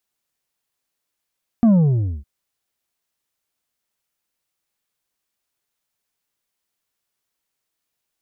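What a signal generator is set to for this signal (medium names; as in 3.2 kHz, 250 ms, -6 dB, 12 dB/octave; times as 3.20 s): sub drop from 240 Hz, over 0.61 s, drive 5.5 dB, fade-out 0.55 s, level -10.5 dB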